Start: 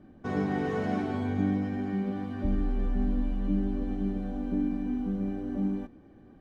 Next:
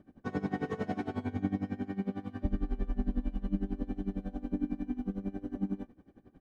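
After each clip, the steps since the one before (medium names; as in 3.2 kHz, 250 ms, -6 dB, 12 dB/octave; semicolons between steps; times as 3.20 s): logarithmic tremolo 11 Hz, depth 20 dB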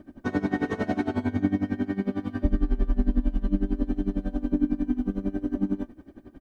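comb 3.2 ms, depth 48%; in parallel at -2.5 dB: compression, threshold -37 dBFS, peak gain reduction 13.5 dB; on the sum: trim +5 dB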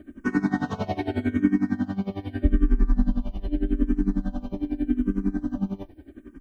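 peaking EQ 520 Hz -5.5 dB 0.67 oct; barber-pole phaser -0.82 Hz; trim +5 dB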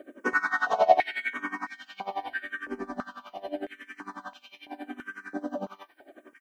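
step-sequenced high-pass 3 Hz 540–2500 Hz; trim +2 dB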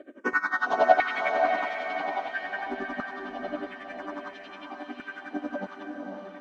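low-pass 5.5 kHz 12 dB/octave; echo that smears into a reverb 527 ms, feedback 43%, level -3.5 dB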